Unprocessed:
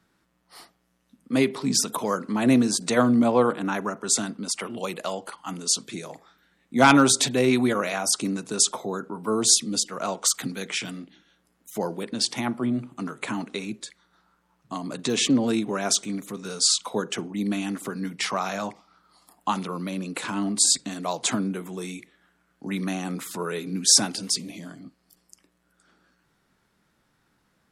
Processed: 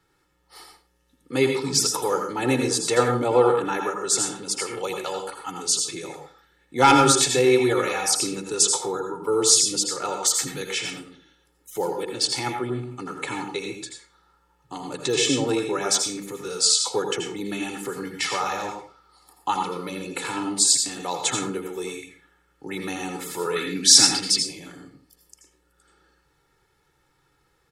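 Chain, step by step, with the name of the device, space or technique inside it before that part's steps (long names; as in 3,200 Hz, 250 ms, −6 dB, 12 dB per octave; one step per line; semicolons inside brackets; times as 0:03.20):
microphone above a desk (comb filter 2.3 ms, depth 87%; convolution reverb RT60 0.40 s, pre-delay 76 ms, DRR 3.5 dB)
0:23.56–0:24.43: octave-band graphic EQ 250/500/2,000/4,000 Hz +8/−6/+9/+5 dB
level −1.5 dB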